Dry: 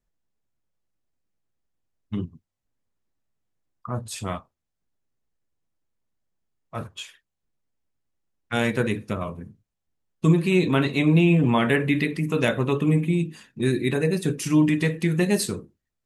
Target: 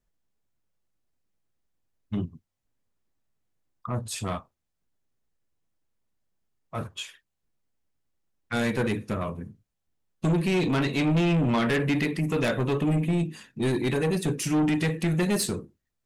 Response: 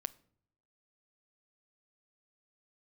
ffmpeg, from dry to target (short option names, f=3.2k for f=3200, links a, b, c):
-af "asoftclip=type=tanh:threshold=-20.5dB,volume=1dB"